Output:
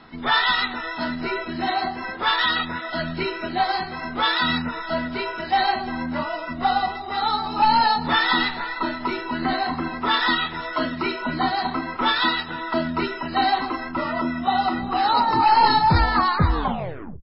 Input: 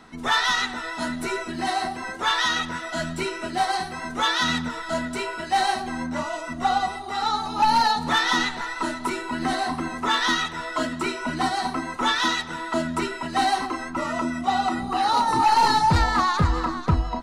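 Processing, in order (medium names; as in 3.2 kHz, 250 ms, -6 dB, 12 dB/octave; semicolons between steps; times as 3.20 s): tape stop on the ending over 0.69 s; trim +2 dB; MP3 16 kbps 12 kHz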